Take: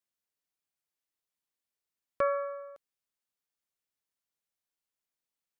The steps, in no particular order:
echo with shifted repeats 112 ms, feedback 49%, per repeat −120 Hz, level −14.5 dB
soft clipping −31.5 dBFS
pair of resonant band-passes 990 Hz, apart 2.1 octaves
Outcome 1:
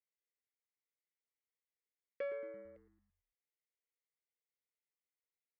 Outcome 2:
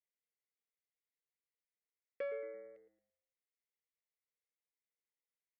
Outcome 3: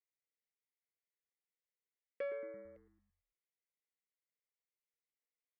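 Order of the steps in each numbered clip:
pair of resonant band-passes, then soft clipping, then echo with shifted repeats
echo with shifted repeats, then pair of resonant band-passes, then soft clipping
pair of resonant band-passes, then echo with shifted repeats, then soft clipping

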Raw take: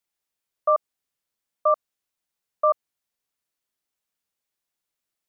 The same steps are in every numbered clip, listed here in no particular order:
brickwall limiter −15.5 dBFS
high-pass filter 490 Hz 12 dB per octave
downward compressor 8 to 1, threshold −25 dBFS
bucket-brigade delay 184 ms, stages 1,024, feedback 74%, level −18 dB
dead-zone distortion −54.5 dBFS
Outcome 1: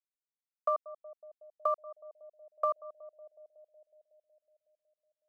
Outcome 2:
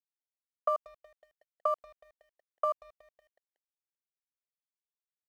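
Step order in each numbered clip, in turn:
dead-zone distortion, then brickwall limiter, then bucket-brigade delay, then downward compressor, then high-pass filter
downward compressor, then high-pass filter, then brickwall limiter, then bucket-brigade delay, then dead-zone distortion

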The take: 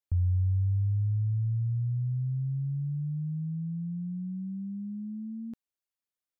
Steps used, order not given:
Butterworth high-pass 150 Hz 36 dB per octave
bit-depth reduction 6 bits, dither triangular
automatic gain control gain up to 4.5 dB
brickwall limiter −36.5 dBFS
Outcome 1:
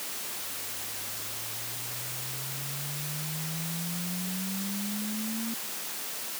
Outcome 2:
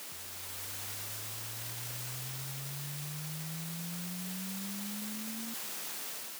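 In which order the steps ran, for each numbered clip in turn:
brickwall limiter, then automatic gain control, then bit-depth reduction, then Butterworth high-pass
bit-depth reduction, then Butterworth high-pass, then brickwall limiter, then automatic gain control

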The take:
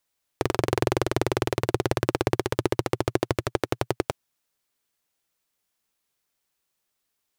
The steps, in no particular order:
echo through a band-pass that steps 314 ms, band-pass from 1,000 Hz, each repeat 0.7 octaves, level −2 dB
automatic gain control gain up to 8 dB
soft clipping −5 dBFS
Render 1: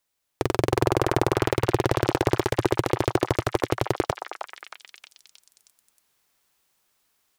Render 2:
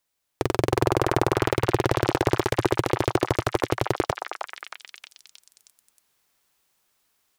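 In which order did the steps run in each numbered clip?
automatic gain control, then soft clipping, then echo through a band-pass that steps
automatic gain control, then echo through a band-pass that steps, then soft clipping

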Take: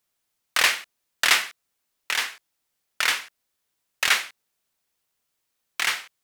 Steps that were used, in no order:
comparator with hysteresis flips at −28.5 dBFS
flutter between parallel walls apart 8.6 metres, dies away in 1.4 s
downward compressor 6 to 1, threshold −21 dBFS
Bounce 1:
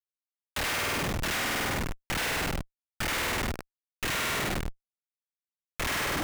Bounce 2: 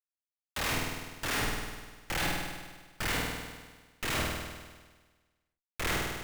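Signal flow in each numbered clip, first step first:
flutter between parallel walls, then downward compressor, then comparator with hysteresis
downward compressor, then comparator with hysteresis, then flutter between parallel walls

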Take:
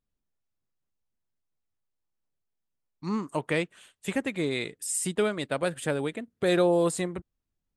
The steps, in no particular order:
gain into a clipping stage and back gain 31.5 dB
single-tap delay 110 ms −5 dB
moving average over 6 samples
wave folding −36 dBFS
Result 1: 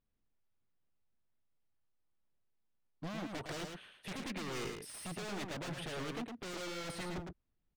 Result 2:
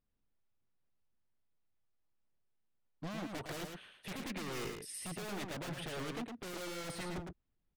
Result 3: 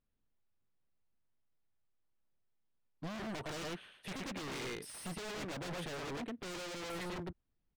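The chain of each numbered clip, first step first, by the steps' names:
gain into a clipping stage and back, then moving average, then wave folding, then single-tap delay
moving average, then gain into a clipping stage and back, then wave folding, then single-tap delay
single-tap delay, then gain into a clipping stage and back, then moving average, then wave folding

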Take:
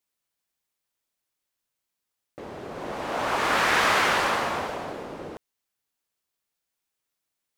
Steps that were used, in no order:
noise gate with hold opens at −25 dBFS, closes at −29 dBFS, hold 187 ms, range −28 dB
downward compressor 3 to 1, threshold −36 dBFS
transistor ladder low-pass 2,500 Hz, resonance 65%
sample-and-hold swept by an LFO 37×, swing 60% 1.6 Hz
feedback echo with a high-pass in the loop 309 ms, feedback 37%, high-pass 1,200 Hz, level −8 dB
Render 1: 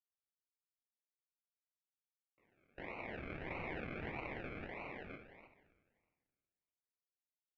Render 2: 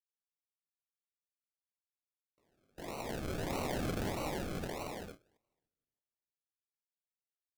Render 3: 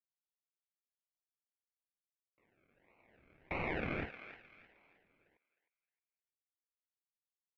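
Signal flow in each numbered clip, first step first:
noise gate with hold, then feedback echo with a high-pass in the loop, then sample-and-hold swept by an LFO, then downward compressor, then transistor ladder low-pass
feedback echo with a high-pass in the loop, then noise gate with hold, then transistor ladder low-pass, then sample-and-hold swept by an LFO, then downward compressor
sample-and-hold swept by an LFO, then transistor ladder low-pass, then downward compressor, then noise gate with hold, then feedback echo with a high-pass in the loop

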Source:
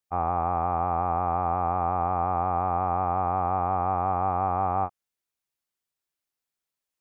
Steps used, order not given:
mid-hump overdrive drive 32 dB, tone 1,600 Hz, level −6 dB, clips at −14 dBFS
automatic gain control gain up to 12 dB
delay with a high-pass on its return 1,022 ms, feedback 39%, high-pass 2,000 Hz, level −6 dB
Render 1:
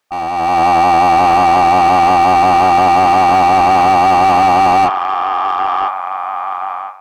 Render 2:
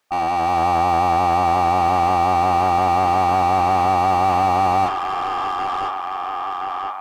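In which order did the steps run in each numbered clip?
delay with a high-pass on its return, then mid-hump overdrive, then automatic gain control
automatic gain control, then delay with a high-pass on its return, then mid-hump overdrive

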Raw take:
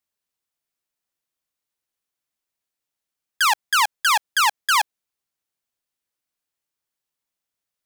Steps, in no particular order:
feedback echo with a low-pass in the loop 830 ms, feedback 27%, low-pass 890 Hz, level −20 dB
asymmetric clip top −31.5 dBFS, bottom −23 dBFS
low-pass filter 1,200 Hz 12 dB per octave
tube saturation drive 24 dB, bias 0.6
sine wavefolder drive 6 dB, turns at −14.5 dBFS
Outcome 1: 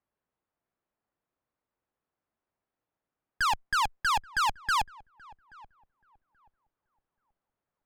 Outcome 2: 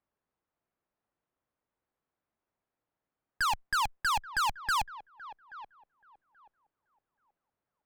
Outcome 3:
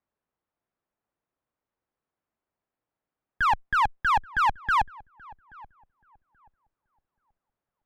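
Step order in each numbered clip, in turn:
low-pass filter, then asymmetric clip, then sine wavefolder, then tube saturation, then feedback echo with a low-pass in the loop
low-pass filter, then sine wavefolder, then feedback echo with a low-pass in the loop, then tube saturation, then asymmetric clip
tube saturation, then low-pass filter, then asymmetric clip, then sine wavefolder, then feedback echo with a low-pass in the loop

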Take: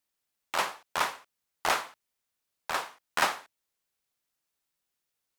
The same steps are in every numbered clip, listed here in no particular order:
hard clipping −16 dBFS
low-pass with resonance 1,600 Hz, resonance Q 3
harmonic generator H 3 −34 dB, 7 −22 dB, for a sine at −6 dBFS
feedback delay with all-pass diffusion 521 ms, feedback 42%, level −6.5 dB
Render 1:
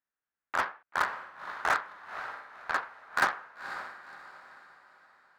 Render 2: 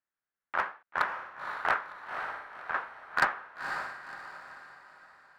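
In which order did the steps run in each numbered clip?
low-pass with resonance, then hard clipping, then feedback delay with all-pass diffusion, then harmonic generator
harmonic generator, then low-pass with resonance, then hard clipping, then feedback delay with all-pass diffusion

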